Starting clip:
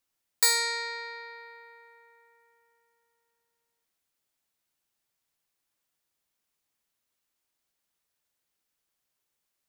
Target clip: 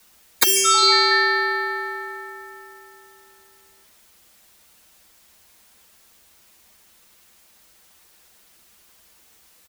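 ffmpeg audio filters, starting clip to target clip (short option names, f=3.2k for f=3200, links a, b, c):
-filter_complex "[0:a]afftfilt=real='re*lt(hypot(re,im),0.0794)':imag='im*lt(hypot(re,im),0.0794)':win_size=1024:overlap=0.75,aecho=1:1:7.1:0.53,acrossover=split=720|1500|3400[a][b][c][d];[a]acompressor=threshold=-51dB:ratio=4[e];[b]acompressor=threshold=-53dB:ratio=4[f];[d]acompressor=threshold=-42dB:ratio=4[g];[e][f][c][g]amix=inputs=4:normalize=0,apsyclip=32.5dB,afreqshift=-77,volume=-6.5dB"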